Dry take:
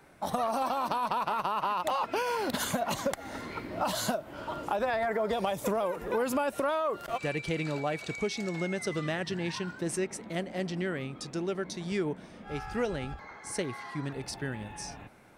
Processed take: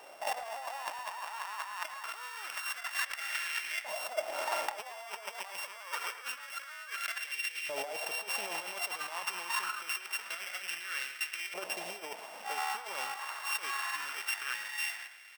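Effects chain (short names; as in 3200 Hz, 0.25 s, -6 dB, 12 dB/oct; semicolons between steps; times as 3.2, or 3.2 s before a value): sample sorter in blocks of 16 samples; dynamic EQ 240 Hz, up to -5 dB, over -46 dBFS, Q 0.9; negative-ratio compressor -37 dBFS, ratio -0.5; LFO high-pass saw up 0.26 Hz 620–2000 Hz; speakerphone echo 0.11 s, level -11 dB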